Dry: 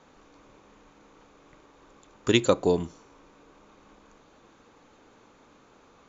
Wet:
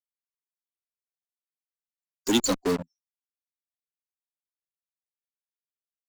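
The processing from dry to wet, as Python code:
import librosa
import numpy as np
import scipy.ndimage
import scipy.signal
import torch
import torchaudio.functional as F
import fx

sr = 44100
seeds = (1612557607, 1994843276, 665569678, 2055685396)

p1 = fx.bin_expand(x, sr, power=3.0)
p2 = scipy.signal.sosfilt(scipy.signal.cheby1(4, 1.0, 220.0, 'highpass', fs=sr, output='sos'), p1)
p3 = fx.band_shelf(p2, sr, hz=1000.0, db=-14.5, octaves=2.9)
p4 = fx.fuzz(p3, sr, gain_db=55.0, gate_db=-49.0)
y = p3 + F.gain(torch.from_numpy(p4), -10.5).numpy()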